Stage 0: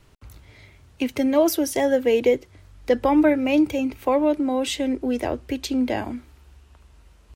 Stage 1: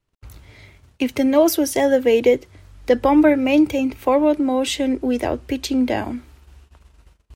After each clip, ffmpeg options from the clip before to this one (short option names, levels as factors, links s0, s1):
-af "agate=range=0.0562:threshold=0.00316:ratio=16:detection=peak,volume=1.5"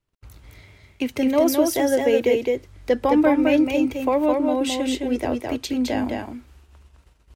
-af "aecho=1:1:212:0.668,volume=0.631"